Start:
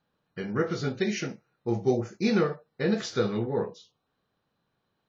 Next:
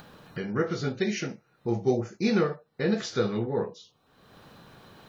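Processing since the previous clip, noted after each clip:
upward compression, threshold −30 dBFS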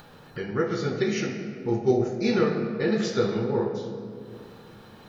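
convolution reverb RT60 2.5 s, pre-delay 8 ms, DRR 3 dB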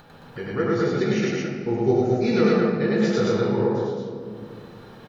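high-shelf EQ 4,200 Hz −6.5 dB
on a send: loudspeakers that aren't time-aligned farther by 34 metres 0 dB, 75 metres −1 dB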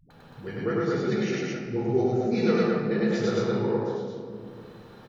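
all-pass dispersion highs, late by 106 ms, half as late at 300 Hz
far-end echo of a speakerphone 170 ms, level −21 dB
level −4 dB

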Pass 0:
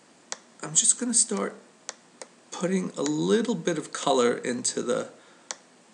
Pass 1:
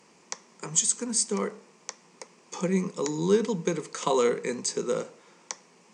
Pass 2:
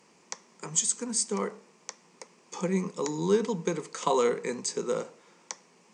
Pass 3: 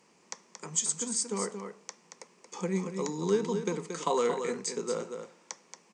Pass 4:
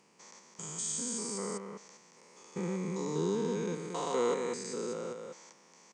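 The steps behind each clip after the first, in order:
EQ curve with evenly spaced ripples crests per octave 0.8, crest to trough 8 dB; level −2.5 dB
dynamic equaliser 870 Hz, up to +4 dB, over −41 dBFS, Q 1.4; level −2.5 dB
single-tap delay 228 ms −7.5 dB; level −3 dB
spectrum averaged block by block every 200 ms

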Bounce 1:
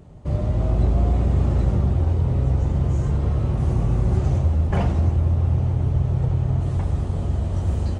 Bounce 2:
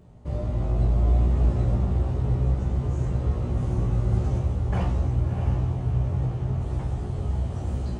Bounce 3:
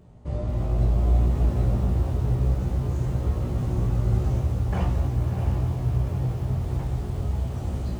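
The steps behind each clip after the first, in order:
tuned comb filter 60 Hz, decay 0.18 s, harmonics all, mix 100%; feedback delay with all-pass diffusion 666 ms, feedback 46%, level −6.5 dB
feedback echo at a low word length 224 ms, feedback 80%, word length 7 bits, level −14 dB

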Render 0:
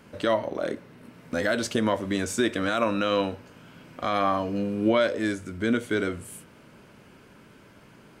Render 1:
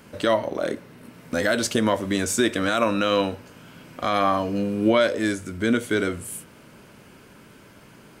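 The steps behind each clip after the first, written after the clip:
high-shelf EQ 6,400 Hz +7.5 dB
level +3 dB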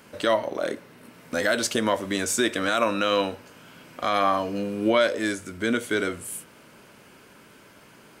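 low-shelf EQ 240 Hz −9 dB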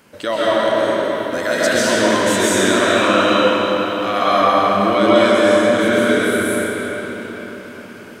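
comb and all-pass reverb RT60 4.8 s, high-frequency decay 0.75×, pre-delay 95 ms, DRR −10 dB

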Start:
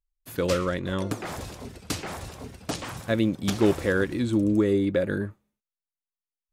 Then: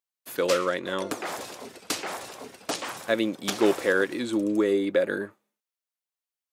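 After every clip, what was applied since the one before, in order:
high-pass filter 370 Hz 12 dB per octave
level +3 dB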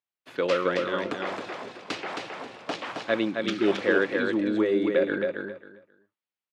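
gain on a spectral selection 0:03.28–0:03.68, 430–1,200 Hz −14 dB
Chebyshev band-pass filter 110–3,000 Hz, order 2
repeating echo 268 ms, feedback 20%, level −4.5 dB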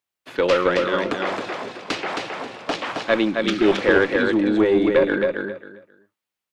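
one-sided soft clipper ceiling −15 dBFS
level +7.5 dB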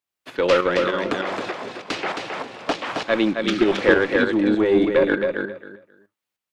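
shaped tremolo saw up 3.3 Hz, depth 55%
level +2.5 dB

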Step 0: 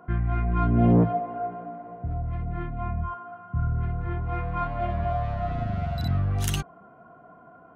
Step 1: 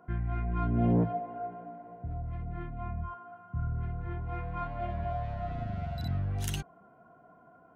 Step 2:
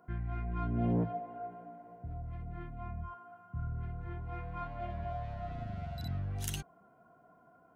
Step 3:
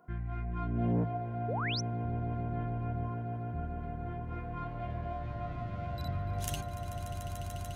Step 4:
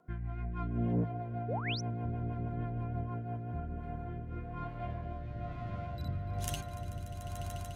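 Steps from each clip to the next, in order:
notch filter 1,200 Hz, Q 6.8; level −7 dB
high-shelf EQ 4,600 Hz +6.5 dB; level −5 dB
echo that builds up and dies away 146 ms, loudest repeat 8, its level −12 dB; sound drawn into the spectrogram rise, 0:01.48–0:01.81, 390–6,300 Hz −36 dBFS
rotating-speaker cabinet horn 6.3 Hz, later 1.1 Hz, at 0:03.06

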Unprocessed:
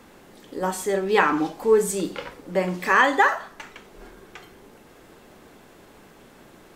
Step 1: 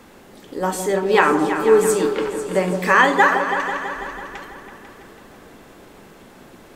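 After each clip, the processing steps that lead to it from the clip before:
echo whose low-pass opens from repeat to repeat 165 ms, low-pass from 750 Hz, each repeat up 2 octaves, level −6 dB
level +3.5 dB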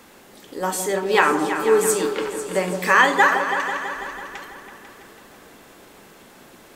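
spectral tilt +1.5 dB per octave
level −1.5 dB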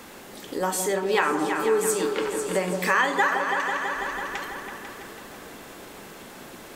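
downward compressor 2 to 1, threshold −32 dBFS, peak gain reduction 12.5 dB
level +4.5 dB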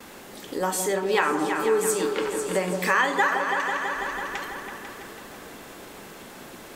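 noise gate with hold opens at −37 dBFS

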